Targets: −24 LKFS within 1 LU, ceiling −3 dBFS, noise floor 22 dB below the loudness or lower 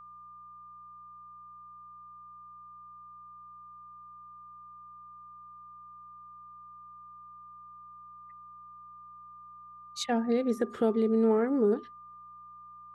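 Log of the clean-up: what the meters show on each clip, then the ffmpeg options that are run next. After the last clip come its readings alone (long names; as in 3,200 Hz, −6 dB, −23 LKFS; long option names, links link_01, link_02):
mains hum 60 Hz; hum harmonics up to 180 Hz; level of the hum −67 dBFS; interfering tone 1,200 Hz; level of the tone −47 dBFS; integrated loudness −28.0 LKFS; sample peak −16.0 dBFS; target loudness −24.0 LKFS
→ -af "bandreject=frequency=60:width_type=h:width=4,bandreject=frequency=120:width_type=h:width=4,bandreject=frequency=180:width_type=h:width=4"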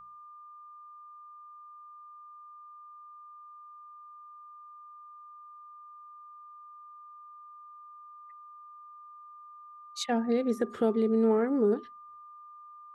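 mains hum none found; interfering tone 1,200 Hz; level of the tone −47 dBFS
→ -af "bandreject=frequency=1200:width=30"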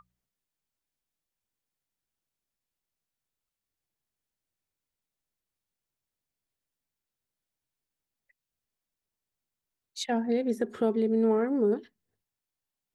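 interfering tone none found; integrated loudness −28.0 LKFS; sample peak −16.0 dBFS; target loudness −24.0 LKFS
→ -af "volume=4dB"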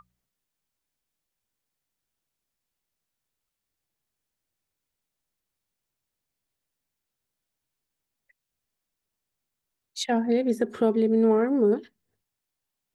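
integrated loudness −24.0 LKFS; sample peak −12.0 dBFS; background noise floor −85 dBFS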